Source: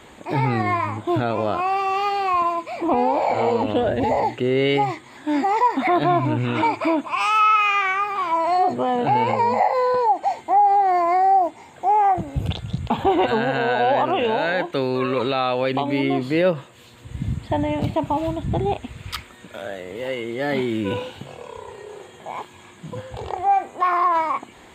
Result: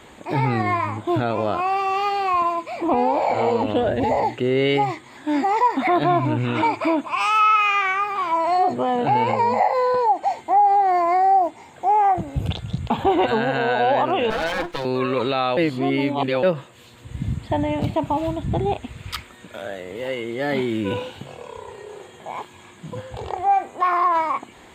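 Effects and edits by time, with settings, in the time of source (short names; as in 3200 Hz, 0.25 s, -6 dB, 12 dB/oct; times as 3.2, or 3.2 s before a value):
14.3–14.85 minimum comb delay 6.1 ms
15.57–16.43 reverse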